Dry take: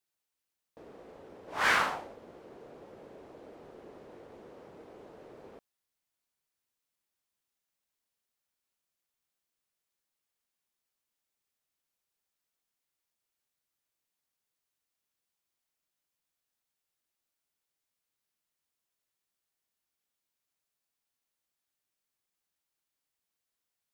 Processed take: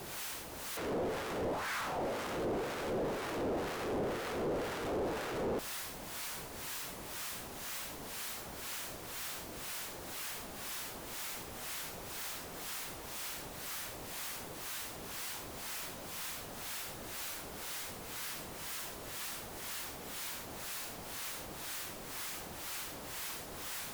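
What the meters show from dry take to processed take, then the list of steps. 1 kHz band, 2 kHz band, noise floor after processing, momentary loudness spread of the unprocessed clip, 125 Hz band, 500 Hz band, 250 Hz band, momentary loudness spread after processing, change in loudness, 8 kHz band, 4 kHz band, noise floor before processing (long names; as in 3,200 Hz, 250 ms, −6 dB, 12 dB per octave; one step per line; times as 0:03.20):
−0.5 dB, −3.5 dB, −47 dBFS, 16 LU, +13.5 dB, +10.5 dB, +12.5 dB, 5 LU, −10.5 dB, +14.5 dB, +5.5 dB, below −85 dBFS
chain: sign of each sample alone
high-shelf EQ 2,200 Hz −8 dB
in parallel at −10 dB: bit reduction 7 bits
on the sum: two-band tremolo in antiphase 2 Hz, depth 70%, crossover 920 Hz
level +13 dB
Ogg Vorbis 128 kbit/s 48,000 Hz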